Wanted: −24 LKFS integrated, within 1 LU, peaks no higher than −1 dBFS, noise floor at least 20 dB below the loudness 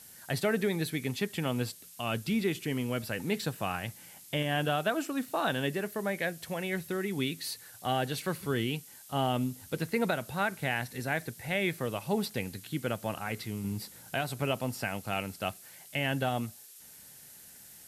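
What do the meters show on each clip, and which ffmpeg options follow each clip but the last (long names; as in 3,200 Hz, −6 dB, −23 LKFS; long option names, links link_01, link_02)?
background noise floor −52 dBFS; target noise floor −53 dBFS; integrated loudness −33.0 LKFS; sample peak −16.5 dBFS; target loudness −24.0 LKFS
→ -af "afftdn=noise_reduction=6:noise_floor=-52"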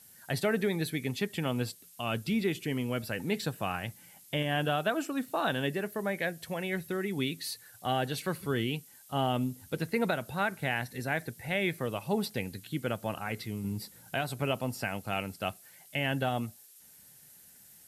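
background noise floor −56 dBFS; integrated loudness −33.0 LKFS; sample peak −17.0 dBFS; target loudness −24.0 LKFS
→ -af "volume=9dB"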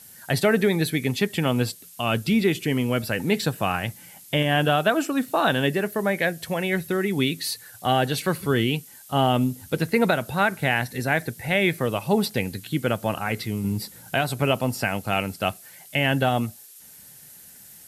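integrated loudness −24.0 LKFS; sample peak −8.0 dBFS; background noise floor −47 dBFS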